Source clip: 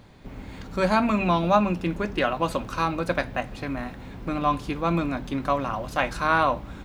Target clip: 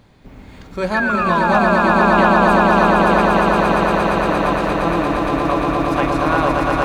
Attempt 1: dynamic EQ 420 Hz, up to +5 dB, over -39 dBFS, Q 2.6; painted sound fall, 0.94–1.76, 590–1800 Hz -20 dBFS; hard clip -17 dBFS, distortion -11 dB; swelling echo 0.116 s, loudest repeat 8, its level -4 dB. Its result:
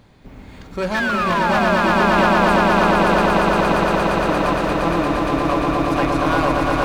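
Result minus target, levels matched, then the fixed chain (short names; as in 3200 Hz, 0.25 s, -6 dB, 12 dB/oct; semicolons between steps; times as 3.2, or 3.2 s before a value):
hard clip: distortion +20 dB
dynamic EQ 420 Hz, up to +5 dB, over -39 dBFS, Q 2.6; painted sound fall, 0.94–1.76, 590–1800 Hz -20 dBFS; hard clip -8 dBFS, distortion -31 dB; swelling echo 0.116 s, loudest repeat 8, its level -4 dB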